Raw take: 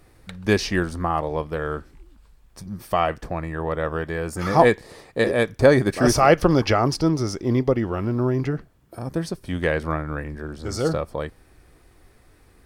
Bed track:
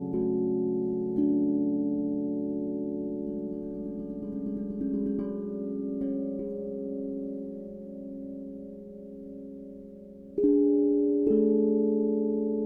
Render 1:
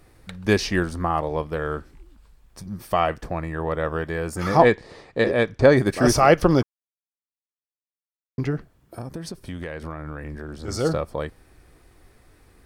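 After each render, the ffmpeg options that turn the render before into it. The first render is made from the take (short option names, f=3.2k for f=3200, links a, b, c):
-filter_complex "[0:a]asettb=1/sr,asplit=3[a][b][c];[a]atrim=end=4.574[d];[b]atrim=start=4.57:end=5.77,asetpts=PTS-STARTPTS,afade=t=in:d=0.004:c=qsin,afade=t=out:st=1.196:d=0.004:c=qsin,lowpass=5.5k[e];[c]atrim=start=5.766[f];[d][e]acrossfade=d=0.004:c1=hsin:c2=qsin[g];[g][f]acrossfade=d=0.004:c1=qsin:c2=hsin,asettb=1/sr,asplit=3[h][i][j];[h]atrim=end=9.014[k];[i]atrim=start=9.01:end=10.68,asetpts=PTS-STARTPTS,afade=t=in:d=0.004:c=qsin,afade=t=out:st=1.666:d=0.004:c=qsin,acompressor=threshold=-29dB:ratio=6:attack=3.2:release=140:knee=1:detection=peak[l];[j]atrim=start=10.676[m];[k][l]acrossfade=d=0.004:c1=hsin:c2=qsin[n];[n][m]acrossfade=d=0.004:c1=qsin:c2=hsin,asplit=3[o][p][q];[o]atrim=end=6.63,asetpts=PTS-STARTPTS,afade=t=out:st=6.626:d=0.004:c=hsin[r];[p]atrim=start=6.63:end=8.38,asetpts=PTS-STARTPTS,volume=0[s];[q]atrim=start=8.38,asetpts=PTS-STARTPTS,afade=t=in:d=0.004:c=hsin[t];[r][s][t]concat=n=3:v=0:a=1"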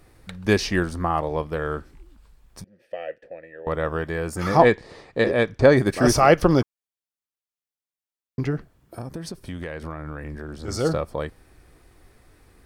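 -filter_complex "[0:a]asettb=1/sr,asplit=3[a][b][c];[a]atrim=end=2.644[d];[b]atrim=start=2.64:end=3.67,asetpts=PTS-STARTPTS,afade=t=in:d=0.004:c=qsin,afade=t=out:st=1.026:d=0.004:c=qsin,asplit=3[e][f][g];[e]bandpass=f=530:t=q:w=8,volume=0dB[h];[f]bandpass=f=1.84k:t=q:w=8,volume=-6dB[i];[g]bandpass=f=2.48k:t=q:w=8,volume=-9dB[j];[h][i][j]amix=inputs=3:normalize=0[k];[c]atrim=start=3.666[l];[d][k]acrossfade=d=0.004:c1=hsin:c2=qsin[m];[m][l]acrossfade=d=0.004:c1=qsin:c2=hsin"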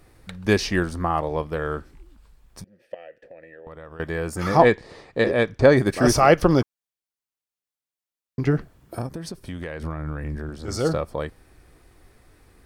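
-filter_complex "[0:a]asettb=1/sr,asplit=3[a][b][c];[a]atrim=end=2.944[d];[b]atrim=start=2.94:end=4,asetpts=PTS-STARTPTS,afade=t=in:d=0.004:c=qsin,afade=t=out:st=1.056:d=0.004:c=qsin,acompressor=threshold=-40dB:ratio=4:attack=3.2:release=140:knee=1:detection=peak[e];[c]atrim=start=3.996[f];[d][e]acrossfade=d=0.004:c1=hsin:c2=qsin[g];[g][f]acrossfade=d=0.004:c1=qsin:c2=hsin,asettb=1/sr,asplit=3[h][i][j];[h]atrim=end=8.474[k];[i]atrim=start=8.47:end=9.07,asetpts=PTS-STARTPTS,afade=t=in:d=0.004:c=qsin,afade=t=out:st=0.596:d=0.004:c=qsin,acontrast=30[l];[j]atrim=start=9.066[m];[k][l]acrossfade=d=0.004:c1=hsin:c2=qsin[n];[n][m]acrossfade=d=0.004:c1=qsin:c2=hsin,asettb=1/sr,asplit=3[o][p][q];[o]atrim=end=9.794[r];[p]atrim=start=9.79:end=10.5,asetpts=PTS-STARTPTS,afade=t=in:d=0.004:c=qsin,afade=t=out:st=0.706:d=0.004:c=qsin,bass=f=250:g=6,treble=f=4k:g=1[s];[q]atrim=start=10.496[t];[r][s]acrossfade=d=0.004:c1=hsin:c2=qsin[u];[u][t]acrossfade=d=0.004:c1=qsin:c2=hsin"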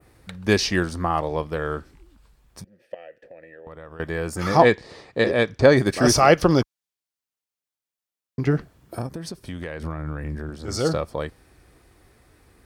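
-af "highpass=44,adynamicequalizer=threshold=0.0112:dfrequency=4900:dqfactor=0.8:tfrequency=4900:tqfactor=0.8:attack=5:release=100:ratio=0.375:range=2.5:mode=boostabove:tftype=bell"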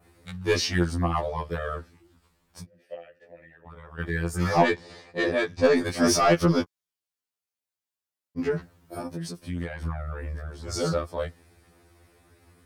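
-af "asoftclip=type=tanh:threshold=-10.5dB,afftfilt=real='re*2*eq(mod(b,4),0)':imag='im*2*eq(mod(b,4),0)':win_size=2048:overlap=0.75"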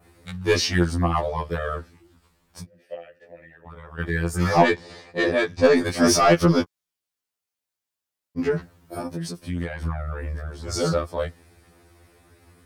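-af "volume=3.5dB"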